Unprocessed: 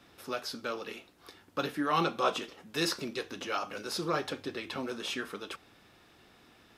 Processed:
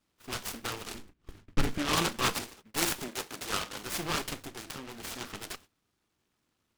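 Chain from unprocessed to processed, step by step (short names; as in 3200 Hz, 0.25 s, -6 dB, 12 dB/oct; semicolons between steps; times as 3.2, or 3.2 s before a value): minimum comb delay 0.75 ms; 0.94–1.78 tilt -3.5 dB/oct; 3.08–3.83 HPF 260 Hz; 4.39–5.21 compressor 6:1, threshold -40 dBFS, peak gain reduction 7.5 dB; dynamic EQ 3600 Hz, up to +5 dB, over -50 dBFS, Q 0.75; gate -51 dBFS, range -17 dB; noise-modulated delay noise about 1700 Hz, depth 0.14 ms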